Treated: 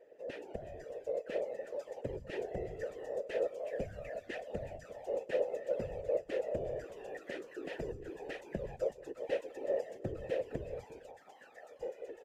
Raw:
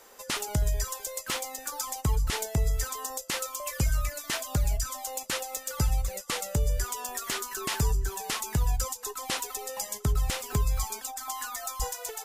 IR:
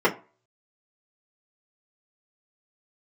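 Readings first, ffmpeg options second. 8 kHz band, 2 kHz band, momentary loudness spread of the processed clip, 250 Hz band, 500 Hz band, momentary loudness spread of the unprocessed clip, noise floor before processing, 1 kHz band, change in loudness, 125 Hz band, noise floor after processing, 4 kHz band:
under -30 dB, -11.5 dB, 10 LU, -7.0 dB, +4.0 dB, 5 LU, -46 dBFS, -14.5 dB, -9.0 dB, -19.0 dB, -58 dBFS, -22.0 dB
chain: -filter_complex "[0:a]tiltshelf=f=970:g=9,dynaudnorm=f=140:g=21:m=4.5dB,asplit=3[a][b][c];[a]bandpass=f=530:t=q:w=8,volume=0dB[d];[b]bandpass=f=1.84k:t=q:w=8,volume=-6dB[e];[c]bandpass=f=2.48k:t=q:w=8,volume=-9dB[f];[d][e][f]amix=inputs=3:normalize=0,afftfilt=real='hypot(re,im)*cos(2*PI*random(0))':imag='hypot(re,im)*sin(2*PI*random(1))':win_size=512:overlap=0.75,aecho=1:1:350:0.1,volume=6dB"

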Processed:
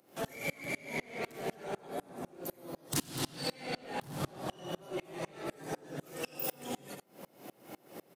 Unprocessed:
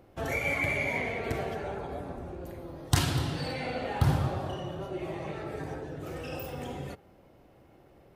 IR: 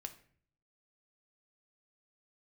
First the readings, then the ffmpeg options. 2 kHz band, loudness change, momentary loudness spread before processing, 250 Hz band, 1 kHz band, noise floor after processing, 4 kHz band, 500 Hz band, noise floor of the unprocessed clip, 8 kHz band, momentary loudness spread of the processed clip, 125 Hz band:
-9.0 dB, -7.0 dB, 13 LU, -5.5 dB, -6.0 dB, -66 dBFS, -3.5 dB, -5.5 dB, -58 dBFS, -0.5 dB, 14 LU, -14.5 dB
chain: -filter_complex "[0:a]highpass=f=160:w=0.5412,highpass=f=160:w=1.3066,asplit=2[a][b];[b]asoftclip=type=hard:threshold=-28dB,volume=-9.5dB[c];[a][c]amix=inputs=2:normalize=0,acrossover=split=470[d][e];[e]acompressor=threshold=-35dB:ratio=6[f];[d][f]amix=inputs=2:normalize=0,equalizer=f=11k:t=o:w=1.9:g=3,acompressor=mode=upward:threshold=-37dB:ratio=2.5,asoftclip=type=tanh:threshold=-28.5dB,highshelf=f=4.5k:g=12,aecho=1:1:90:0.237,aeval=exprs='val(0)*pow(10,-30*if(lt(mod(-4*n/s,1),2*abs(-4)/1000),1-mod(-4*n/s,1)/(2*abs(-4)/1000),(mod(-4*n/s,1)-2*abs(-4)/1000)/(1-2*abs(-4)/1000))/20)':c=same,volume=3.5dB"

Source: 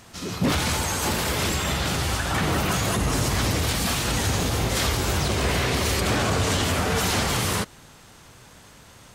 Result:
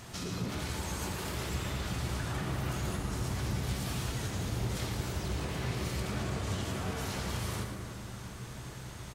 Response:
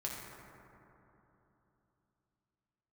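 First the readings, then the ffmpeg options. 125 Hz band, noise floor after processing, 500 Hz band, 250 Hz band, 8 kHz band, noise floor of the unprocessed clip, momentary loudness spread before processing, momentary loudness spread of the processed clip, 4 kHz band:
-8.5 dB, -45 dBFS, -13.0 dB, -10.5 dB, -15.0 dB, -49 dBFS, 2 LU, 9 LU, -15.0 dB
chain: -filter_complex "[0:a]acompressor=threshold=-36dB:ratio=12,asplit=8[a][b][c][d][e][f][g][h];[b]adelay=114,afreqshift=93,volume=-8.5dB[i];[c]adelay=228,afreqshift=186,volume=-13.2dB[j];[d]adelay=342,afreqshift=279,volume=-18dB[k];[e]adelay=456,afreqshift=372,volume=-22.7dB[l];[f]adelay=570,afreqshift=465,volume=-27.4dB[m];[g]adelay=684,afreqshift=558,volume=-32.2dB[n];[h]adelay=798,afreqshift=651,volume=-36.9dB[o];[a][i][j][k][l][m][n][o]amix=inputs=8:normalize=0,asplit=2[p][q];[1:a]atrim=start_sample=2205,lowshelf=f=220:g=8.5[r];[q][r]afir=irnorm=-1:irlink=0,volume=-1.5dB[s];[p][s]amix=inputs=2:normalize=0,volume=-5dB"

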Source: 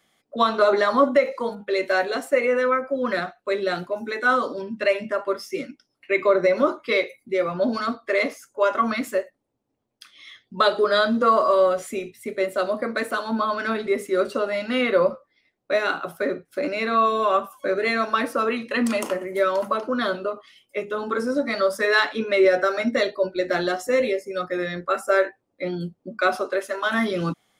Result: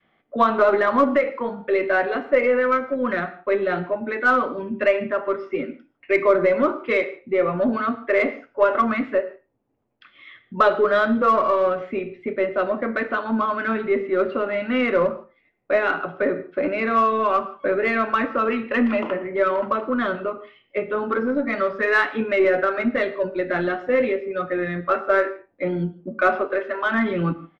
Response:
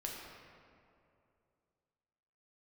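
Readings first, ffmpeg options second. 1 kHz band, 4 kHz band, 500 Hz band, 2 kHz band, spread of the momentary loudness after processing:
+1.5 dB, -8.0 dB, +1.0 dB, +1.5 dB, 8 LU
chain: -filter_complex "[0:a]lowpass=f=2.8k:w=0.5412,lowpass=f=2.8k:w=1.3066,aemphasis=mode=reproduction:type=50kf,asplit=2[a][b];[b]adelay=99.13,volume=-25dB,highshelf=f=4k:g=-2.23[c];[a][c]amix=inputs=2:normalize=0,asplit=2[d][e];[e]asoftclip=type=tanh:threshold=-22.5dB,volume=-11dB[f];[d][f]amix=inputs=2:normalize=0,adynamicequalizer=threshold=0.0282:dfrequency=590:dqfactor=0.84:tfrequency=590:tqfactor=0.84:attack=5:release=100:ratio=0.375:range=2.5:mode=cutabove:tftype=bell,asplit=2[g][h];[1:a]atrim=start_sample=2205,afade=t=out:st=0.22:d=0.01,atrim=end_sample=10143[i];[h][i]afir=irnorm=-1:irlink=0,volume=-7dB[j];[g][j]amix=inputs=2:normalize=0,aeval=exprs='0.562*(cos(1*acos(clip(val(0)/0.562,-1,1)))-cos(1*PI/2))+0.01*(cos(4*acos(clip(val(0)/0.562,-1,1)))-cos(4*PI/2))':c=same"

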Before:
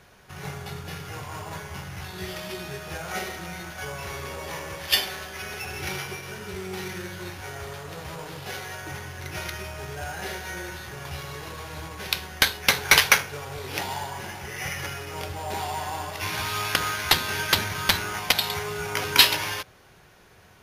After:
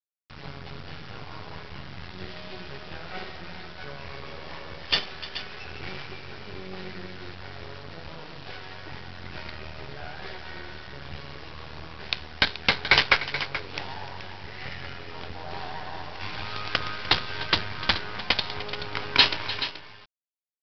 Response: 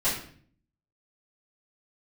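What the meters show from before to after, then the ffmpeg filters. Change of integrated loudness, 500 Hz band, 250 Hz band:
-1.5 dB, -4.0 dB, -2.5 dB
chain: -af "lowshelf=f=200:g=3,aresample=11025,acrusher=bits=4:dc=4:mix=0:aa=0.000001,aresample=44100,aecho=1:1:300|429:0.168|0.251,volume=-2dB"

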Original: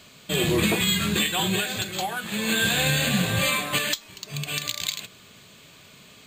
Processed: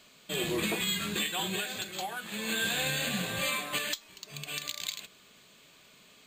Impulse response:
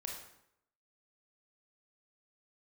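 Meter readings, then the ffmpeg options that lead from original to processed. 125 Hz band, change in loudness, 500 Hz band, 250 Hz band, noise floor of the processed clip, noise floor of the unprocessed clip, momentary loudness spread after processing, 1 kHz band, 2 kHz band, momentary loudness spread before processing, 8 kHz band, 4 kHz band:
-13.5 dB, -8.0 dB, -8.0 dB, -10.5 dB, -59 dBFS, -50 dBFS, 8 LU, -7.5 dB, -7.5 dB, 9 LU, -7.5 dB, -7.5 dB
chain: -af "equalizer=f=100:t=o:w=1.3:g=-11,volume=-7.5dB"

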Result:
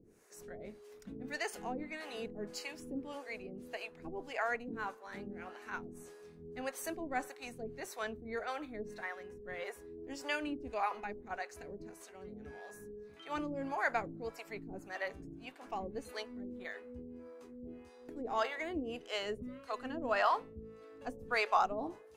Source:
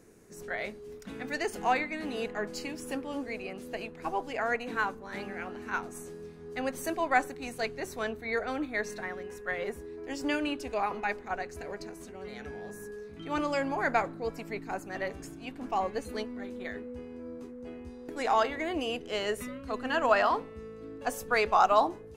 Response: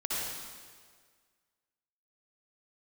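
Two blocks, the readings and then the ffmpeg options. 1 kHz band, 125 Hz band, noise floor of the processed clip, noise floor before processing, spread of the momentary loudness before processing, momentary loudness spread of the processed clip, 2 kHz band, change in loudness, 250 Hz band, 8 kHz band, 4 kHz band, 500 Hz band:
-8.0 dB, -6.5 dB, -57 dBFS, -47 dBFS, 16 LU, 16 LU, -7.0 dB, -7.5 dB, -7.0 dB, -6.5 dB, -6.0 dB, -8.0 dB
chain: -filter_complex "[0:a]acrossover=split=470[a][b];[a]aeval=exprs='val(0)*(1-1/2+1/2*cos(2*PI*1.7*n/s))':c=same[c];[b]aeval=exprs='val(0)*(1-1/2-1/2*cos(2*PI*1.7*n/s))':c=same[d];[c][d]amix=inputs=2:normalize=0,volume=-2dB"

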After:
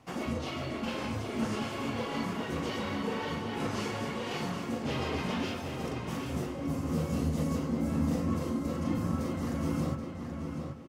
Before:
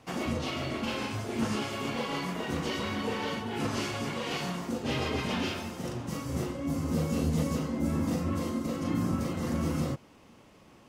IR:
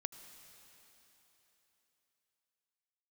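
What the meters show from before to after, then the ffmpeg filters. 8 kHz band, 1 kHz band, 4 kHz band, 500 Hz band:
-4.0 dB, -1.0 dB, -4.0 dB, -1.0 dB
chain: -filter_complex "[0:a]flanger=delay=0.9:depth=3.9:regen=-67:speed=1.8:shape=sinusoidal,asplit=2[a][b];[b]adelay=779,lowpass=f=4.2k:p=1,volume=-5.5dB,asplit=2[c][d];[d]adelay=779,lowpass=f=4.2k:p=1,volume=0.31,asplit=2[e][f];[f]adelay=779,lowpass=f=4.2k:p=1,volume=0.31,asplit=2[g][h];[h]adelay=779,lowpass=f=4.2k:p=1,volume=0.31[i];[a][c][e][g][i]amix=inputs=5:normalize=0,asplit=2[j][k];[1:a]atrim=start_sample=2205,lowpass=2.4k[l];[k][l]afir=irnorm=-1:irlink=0,volume=-8.5dB[m];[j][m]amix=inputs=2:normalize=0"

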